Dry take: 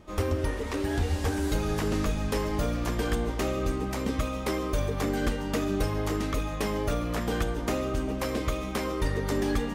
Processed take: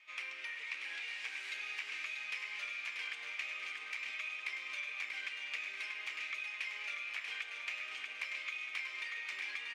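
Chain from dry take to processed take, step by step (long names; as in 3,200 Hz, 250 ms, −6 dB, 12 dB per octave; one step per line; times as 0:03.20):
four-pole ladder band-pass 2,500 Hz, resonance 75%
on a send: repeating echo 636 ms, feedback 41%, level −6 dB
on the sum: downward compressor 2 to 1, threshold −51 dBFS, peak gain reduction 7.5 dB
level +9 dB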